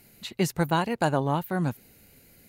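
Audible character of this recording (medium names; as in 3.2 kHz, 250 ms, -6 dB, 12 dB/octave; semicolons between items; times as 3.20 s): noise floor -59 dBFS; spectral tilt -5.5 dB/octave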